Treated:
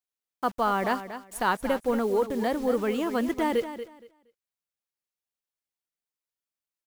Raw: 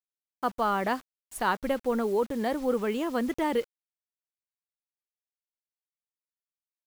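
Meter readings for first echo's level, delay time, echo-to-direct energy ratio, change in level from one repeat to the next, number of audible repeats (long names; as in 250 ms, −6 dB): −11.5 dB, 234 ms, −11.5 dB, −14.0 dB, 2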